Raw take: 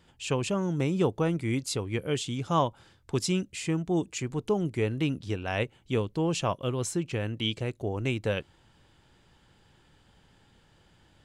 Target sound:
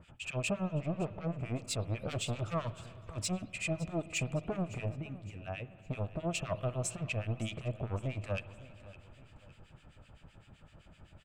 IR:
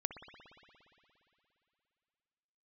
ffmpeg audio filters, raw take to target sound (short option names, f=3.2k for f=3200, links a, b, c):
-filter_complex "[0:a]bass=f=250:g=10,treble=f=4k:g=-5,asplit=3[a][b][c];[a]afade=t=out:st=2.08:d=0.02[d];[b]volume=29dB,asoftclip=hard,volume=-29dB,afade=t=in:st=2.08:d=0.02,afade=t=out:st=2.53:d=0.02[e];[c]afade=t=in:st=2.53:d=0.02[f];[d][e][f]amix=inputs=3:normalize=0,asettb=1/sr,asplit=3[g][h][i];[g]atrim=end=4.954[j];[h]atrim=start=4.95:end=5.79,asetpts=PTS-STARTPTS,afade=t=in:d=0.004:c=qsin,afade=t=out:st=0.836:d=0.004:c=qsin,acompressor=threshold=-36dB:ratio=12[k];[i]atrim=start=5.786[l];[j][k]acrossfade=d=0.004:c1=hsin:c2=qsin[m];[m][l]acrossfade=d=0.004:c1=qsin:c2=hsin,alimiter=limit=-19.5dB:level=0:latency=1:release=63,asoftclip=type=tanh:threshold=-30dB,equalizer=f=630:t=o:w=0.33:g=12,equalizer=f=1.25k:t=o:w=0.33:g=9,equalizer=f=2.5k:t=o:w=0.33:g=11,equalizer=f=8k:t=o:w=0.33:g=9,asettb=1/sr,asplit=3[n][o][p];[n]atrim=end=0.754[q];[o]atrim=start=0.75:end=1.43,asetpts=PTS-STARTPTS,afade=t=in:d=0.004:c=qsin,afade=t=out:st=0.676:d=0.004:c=qsin,adynamicsmooth=sensitivity=2.5:basefreq=1.4k[r];[p]atrim=start=1.426[s];[q][r]acrossfade=d=0.004:c1=hsin:c2=qsin[t];[t][s]acrossfade=d=0.004:c1=qsin:c2=hsin,acrossover=split=1500[u][v];[u]aeval=exprs='val(0)*(1-1/2+1/2*cos(2*PI*7.8*n/s))':c=same[w];[v]aeval=exprs='val(0)*(1-1/2-1/2*cos(2*PI*7.8*n/s))':c=same[x];[w][x]amix=inputs=2:normalize=0,aecho=1:1:561|1122|1683:0.126|0.0491|0.0191,asplit=2[y][z];[1:a]atrim=start_sample=2205[aa];[z][aa]afir=irnorm=-1:irlink=0,volume=-7.5dB[ab];[y][ab]amix=inputs=2:normalize=0,volume=-2dB"